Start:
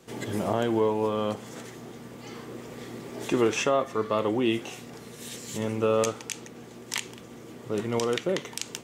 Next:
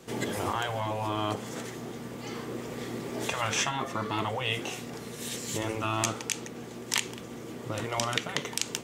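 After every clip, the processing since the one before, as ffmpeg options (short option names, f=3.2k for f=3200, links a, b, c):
-af "afftfilt=real='re*lt(hypot(re,im),0.158)':imag='im*lt(hypot(re,im),0.158)':win_size=1024:overlap=0.75,volume=3.5dB"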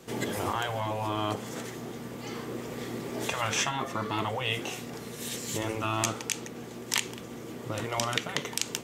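-af "equalizer=f=13k:w=5.2:g=5.5"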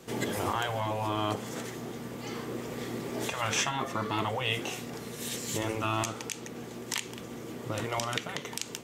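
-af "alimiter=limit=-14.5dB:level=0:latency=1:release=216"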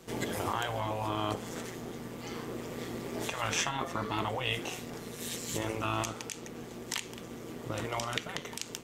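-af "tremolo=f=170:d=0.519"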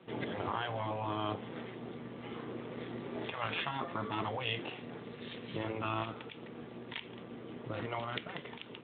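-af "volume=-3dB" -ar 8000 -c:a libspeex -b:a 18k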